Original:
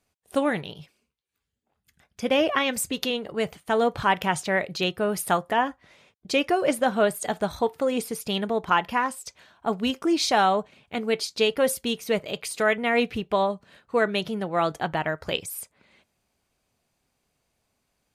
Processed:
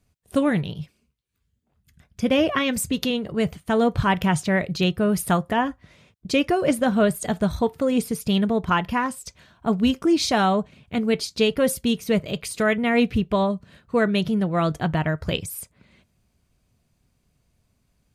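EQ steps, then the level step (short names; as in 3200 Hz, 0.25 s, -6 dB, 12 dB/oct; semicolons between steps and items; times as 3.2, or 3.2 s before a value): tone controls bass +14 dB, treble +1 dB; notch 820 Hz, Q 12; 0.0 dB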